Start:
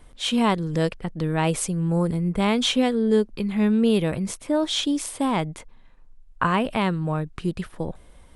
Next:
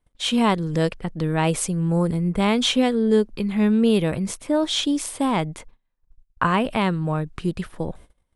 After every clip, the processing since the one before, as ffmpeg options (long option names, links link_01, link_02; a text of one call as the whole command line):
ffmpeg -i in.wav -af "agate=range=-26dB:threshold=-43dB:ratio=16:detection=peak,volume=1.5dB" out.wav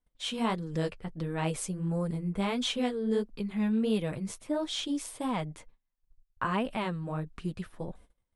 ffmpeg -i in.wav -af "flanger=delay=3.9:depth=6.9:regen=-22:speed=1.5:shape=sinusoidal,volume=-7dB" out.wav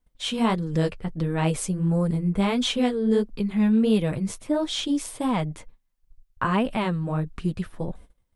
ffmpeg -i in.wav -af "lowshelf=frequency=270:gain=4.5,volume=5.5dB" out.wav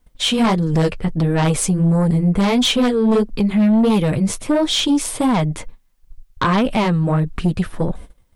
ffmpeg -i in.wav -filter_complex "[0:a]asplit=2[link_01][link_02];[link_02]acompressor=threshold=-30dB:ratio=6,volume=-0.5dB[link_03];[link_01][link_03]amix=inputs=2:normalize=0,aeval=exprs='0.422*sin(PI/2*2.24*val(0)/0.422)':channel_layout=same,volume=-3.5dB" out.wav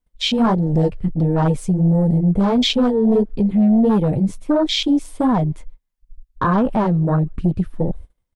ffmpeg -i in.wav -filter_complex "[0:a]asplit=2[link_01][link_02];[link_02]adelay=140,highpass=300,lowpass=3400,asoftclip=type=hard:threshold=-19dB,volume=-26dB[link_03];[link_01][link_03]amix=inputs=2:normalize=0,afwtdn=0.1" out.wav